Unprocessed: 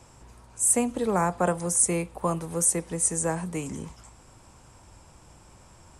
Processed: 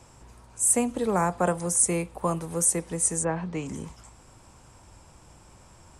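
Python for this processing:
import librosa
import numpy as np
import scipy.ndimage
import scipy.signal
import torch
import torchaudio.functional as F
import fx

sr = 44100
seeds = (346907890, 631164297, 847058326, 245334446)

y = fx.lowpass(x, sr, hz=fx.line((3.23, 2900.0), (3.67, 6700.0)), slope=24, at=(3.23, 3.67), fade=0.02)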